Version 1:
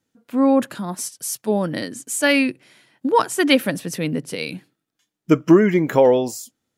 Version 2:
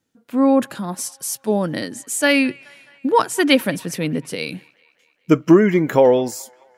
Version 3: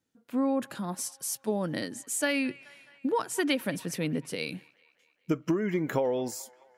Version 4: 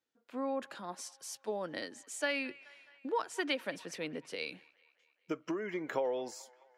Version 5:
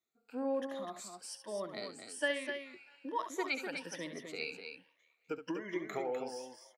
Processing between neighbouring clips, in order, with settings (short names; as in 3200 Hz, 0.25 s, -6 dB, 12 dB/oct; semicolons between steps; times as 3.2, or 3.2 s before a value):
band-limited delay 0.212 s, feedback 60%, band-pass 1600 Hz, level -23 dB; gain +1 dB
compressor 12:1, threshold -16 dBFS, peak gain reduction 11 dB; gain -7.5 dB
three-band isolator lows -16 dB, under 340 Hz, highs -16 dB, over 6700 Hz; gain -4 dB
moving spectral ripple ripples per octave 1.2, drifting +1.2 Hz, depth 16 dB; on a send: loudspeakers at several distances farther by 24 m -10 dB, 86 m -7 dB; on the sum: gain -5.5 dB